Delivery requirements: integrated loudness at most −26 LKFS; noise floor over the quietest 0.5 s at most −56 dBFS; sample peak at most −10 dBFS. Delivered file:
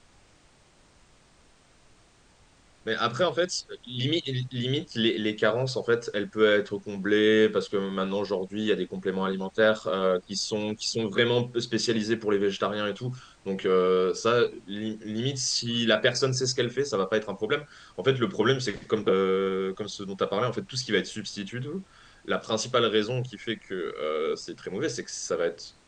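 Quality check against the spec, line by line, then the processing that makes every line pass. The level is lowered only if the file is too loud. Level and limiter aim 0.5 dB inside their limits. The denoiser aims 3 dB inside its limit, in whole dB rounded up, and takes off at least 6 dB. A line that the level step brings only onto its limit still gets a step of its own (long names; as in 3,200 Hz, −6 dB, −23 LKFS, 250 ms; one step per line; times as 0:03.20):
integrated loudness −27.0 LKFS: in spec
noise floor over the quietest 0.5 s −59 dBFS: in spec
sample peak −8.0 dBFS: out of spec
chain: brickwall limiter −10.5 dBFS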